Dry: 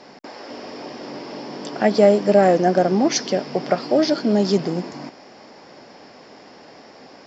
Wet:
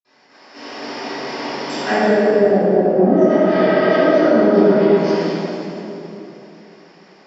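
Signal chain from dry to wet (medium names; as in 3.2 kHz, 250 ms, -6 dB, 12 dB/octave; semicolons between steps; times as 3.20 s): hum notches 50/100/150/200/250/300/350 Hz; repeats whose band climbs or falls 235 ms, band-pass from 380 Hz, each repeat 1.4 oct, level 0 dB; spectral replace 3.04–3.96 s, 530–5300 Hz after; low-pass that closes with the level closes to 350 Hz, closed at -10.5 dBFS; peaking EQ 1.8 kHz +4.5 dB 1.8 oct; gate -33 dBFS, range -14 dB; tilt shelf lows -3.5 dB, about 740 Hz; reverberation RT60 3.0 s, pre-delay 46 ms; trim -4 dB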